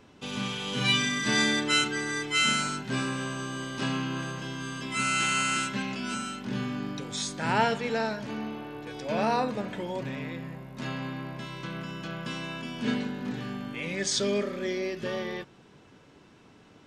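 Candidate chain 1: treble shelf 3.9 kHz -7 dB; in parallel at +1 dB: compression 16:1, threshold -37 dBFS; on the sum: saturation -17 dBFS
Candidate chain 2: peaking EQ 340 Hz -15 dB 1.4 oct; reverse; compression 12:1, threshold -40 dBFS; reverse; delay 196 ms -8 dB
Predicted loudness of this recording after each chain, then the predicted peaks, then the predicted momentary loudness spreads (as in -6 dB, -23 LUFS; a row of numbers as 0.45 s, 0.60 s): -29.0 LUFS, -42.0 LUFS; -17.5 dBFS, -26.5 dBFS; 8 LU, 5 LU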